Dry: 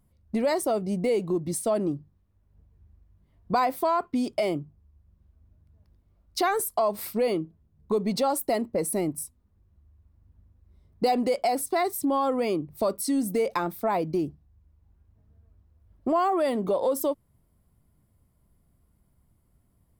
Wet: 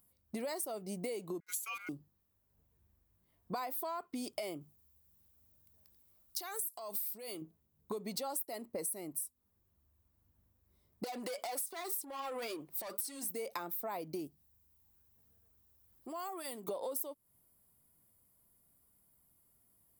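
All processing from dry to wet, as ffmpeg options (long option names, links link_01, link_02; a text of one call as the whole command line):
ffmpeg -i in.wav -filter_complex "[0:a]asettb=1/sr,asplit=3[link_01][link_02][link_03];[link_01]atrim=end=1.404[link_04];[link_02]atrim=start=1.4:end=1.89,asetpts=PTS-STARTPTS,afade=type=in:duration=0.004:curve=qsin,afade=type=out:start_time=0.486:duration=0.004:curve=qsin,highpass=680,agate=range=-18dB:threshold=-46dB:ratio=16:release=100:detection=peak,aeval=exprs='val(0)*sin(2*PI*1800*n/s)':channel_layout=same[link_05];[link_03]atrim=start=1.886[link_06];[link_04][link_05]acrossfade=duration=0.004:curve1=hsin:curve2=qsin[link_07];[link_07][link_06]acrossfade=duration=0.004:curve1=qsin:curve2=hsin,asettb=1/sr,asplit=3[link_08][link_09][link_10];[link_08]atrim=end=4.614[link_11];[link_09]atrim=start=4.61:end=7.42,asetpts=PTS-STARTPTS,afade=type=in:duration=0.004:curve=qsin,afade=type=out:start_time=2.806:duration=0.004:curve=qsin,highpass=41,highshelf=frequency=2900:gain=10.5,acompressor=threshold=-32dB:ratio=5:attack=3.2:release=140:knee=1:detection=peak[link_12];[link_10]atrim=start=7.416[link_13];[link_11][link_12]acrossfade=duration=0.004:curve1=hsin:curve2=qsin[link_14];[link_14][link_13]acrossfade=duration=0.004:curve1=qsin:curve2=hsin,asettb=1/sr,asplit=3[link_15][link_16][link_17];[link_15]atrim=end=11.044[link_18];[link_16]atrim=start=11.04:end=13.3,asetpts=PTS-STARTPTS,afade=type=in:duration=0.004:curve=qsin,afade=type=out:start_time=2.256:duration=0.004:curve=qsin,asplit=2[link_19][link_20];[link_20]highpass=frequency=720:poles=1,volume=17dB,asoftclip=type=tanh:threshold=-13.5dB[link_21];[link_19][link_21]amix=inputs=2:normalize=0,lowpass=frequency=7500:poles=1,volume=-6dB,flanger=delay=1.4:depth=5.1:regen=37:speed=1.9:shape=triangular,acompressor=threshold=-29dB:ratio=10:attack=3.2:release=140:knee=1:detection=peak[link_22];[link_17]atrim=start=13.296[link_23];[link_18][link_22]acrossfade=duration=0.004:curve1=hsin:curve2=qsin[link_24];[link_24][link_23]acrossfade=duration=0.004:curve1=qsin:curve2=hsin,asettb=1/sr,asplit=3[link_25][link_26][link_27];[link_25]atrim=end=14.274[link_28];[link_26]atrim=start=14.27:end=16.68,asetpts=PTS-STARTPTS,afade=type=in:duration=0.004:curve=qsin,afade=type=out:start_time=2.406:duration=0.004:curve=qsin,bandreject=frequency=600:width=7.1,acompressor=threshold=-57dB:ratio=1.5:attack=3.2:release=140:knee=1:detection=peak,highshelf=frequency=3200:gain=9.5[link_29];[link_27]atrim=start=16.676[link_30];[link_28][link_29]acrossfade=duration=0.004:curve1=hsin:curve2=qsin[link_31];[link_31][link_30]acrossfade=duration=0.004:curve1=qsin:curve2=hsin,aemphasis=mode=production:type=bsi,acompressor=threshold=-32dB:ratio=6,volume=-5dB" out.wav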